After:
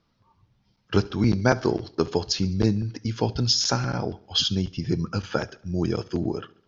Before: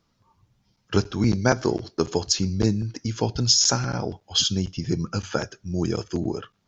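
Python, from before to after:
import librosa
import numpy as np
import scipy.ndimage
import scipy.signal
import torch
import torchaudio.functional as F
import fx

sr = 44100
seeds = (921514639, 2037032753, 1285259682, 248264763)

y = scipy.signal.sosfilt(scipy.signal.butter(4, 5200.0, 'lowpass', fs=sr, output='sos'), x)
y = fx.echo_feedback(y, sr, ms=70, feedback_pct=53, wet_db=-23.0)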